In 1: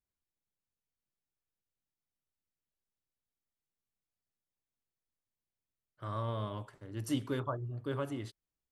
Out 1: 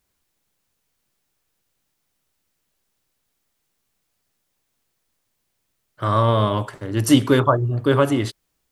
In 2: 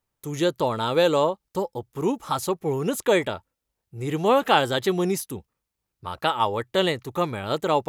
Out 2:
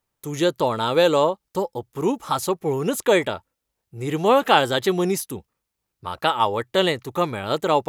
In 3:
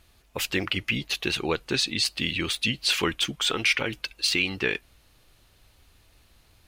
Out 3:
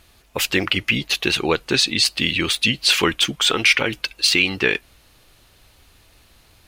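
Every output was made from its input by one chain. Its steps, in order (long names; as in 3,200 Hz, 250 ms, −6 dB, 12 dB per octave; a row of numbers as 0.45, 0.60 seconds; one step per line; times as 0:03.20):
low-shelf EQ 150 Hz −4 dB
normalise the peak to −2 dBFS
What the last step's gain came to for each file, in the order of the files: +20.0, +3.0, +7.5 decibels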